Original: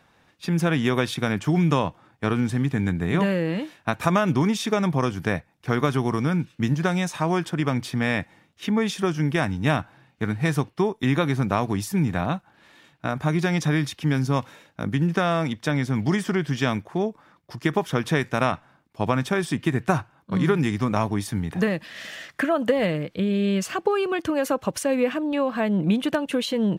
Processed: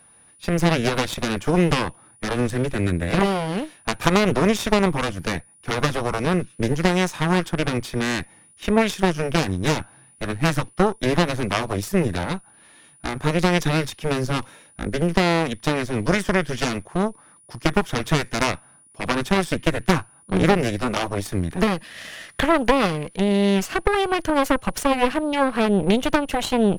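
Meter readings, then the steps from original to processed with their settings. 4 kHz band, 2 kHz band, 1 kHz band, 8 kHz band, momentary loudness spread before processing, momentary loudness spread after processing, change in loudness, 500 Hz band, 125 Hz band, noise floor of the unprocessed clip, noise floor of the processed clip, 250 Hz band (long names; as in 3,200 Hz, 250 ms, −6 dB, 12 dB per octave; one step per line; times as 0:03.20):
+5.5 dB, +3.5 dB, +4.0 dB, +5.0 dB, 7 LU, 9 LU, +2.0 dB, +3.0 dB, −0.5 dB, −61 dBFS, −53 dBFS, +1.0 dB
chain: steady tone 9,700 Hz −51 dBFS
harmonic generator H 6 −8 dB, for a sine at −5.5 dBFS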